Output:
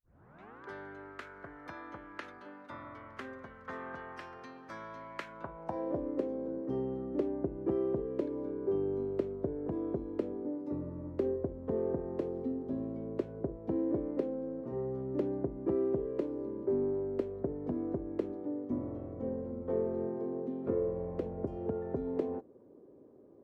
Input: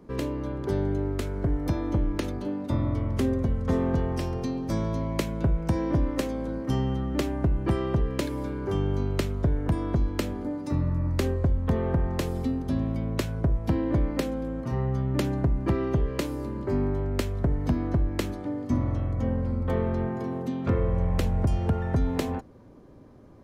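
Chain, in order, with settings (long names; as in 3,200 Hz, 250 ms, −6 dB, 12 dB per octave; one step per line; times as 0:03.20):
turntable start at the beginning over 0.64 s
band-pass filter sweep 1,500 Hz → 410 Hz, 0:05.25–0:06.11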